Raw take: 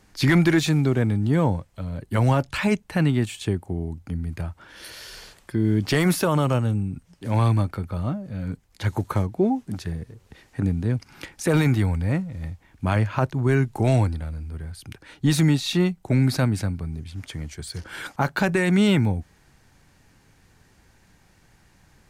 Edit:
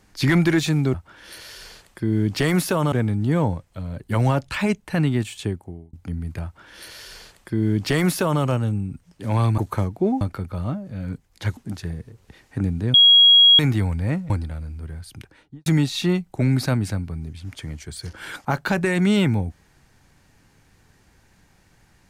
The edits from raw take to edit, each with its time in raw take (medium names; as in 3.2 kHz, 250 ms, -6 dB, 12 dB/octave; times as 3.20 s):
3.43–3.95 s: fade out linear
4.46–6.44 s: copy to 0.94 s
8.96–9.59 s: move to 7.60 s
10.96–11.61 s: bleep 3.3 kHz -8.5 dBFS
12.32–14.01 s: delete
14.86–15.37 s: studio fade out